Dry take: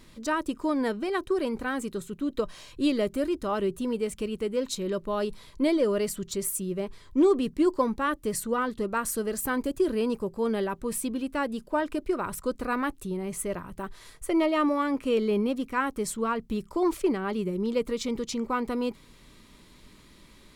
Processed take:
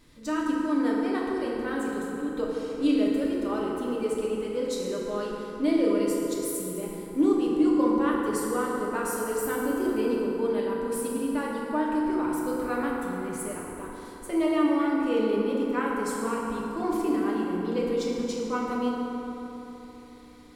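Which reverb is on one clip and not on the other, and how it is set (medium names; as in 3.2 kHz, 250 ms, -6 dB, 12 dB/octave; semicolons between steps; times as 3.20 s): FDN reverb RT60 3.7 s, high-frequency decay 0.45×, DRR -4.5 dB; trim -6.5 dB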